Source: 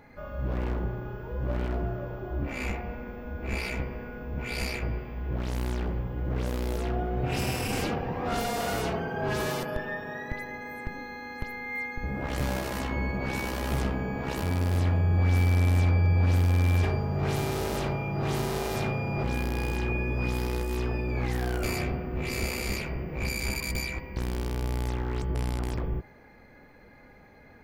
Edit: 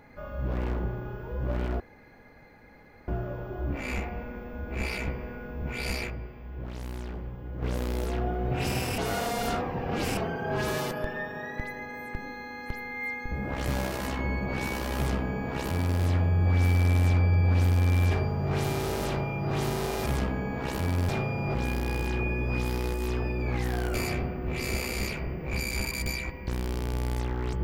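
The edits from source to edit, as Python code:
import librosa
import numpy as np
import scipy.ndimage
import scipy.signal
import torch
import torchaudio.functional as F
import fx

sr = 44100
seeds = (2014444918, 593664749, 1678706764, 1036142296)

y = fx.edit(x, sr, fx.insert_room_tone(at_s=1.8, length_s=1.28),
    fx.clip_gain(start_s=4.82, length_s=1.52, db=-6.5),
    fx.reverse_span(start_s=7.7, length_s=1.19),
    fx.duplicate(start_s=13.69, length_s=1.03, to_s=18.78), tone=tone)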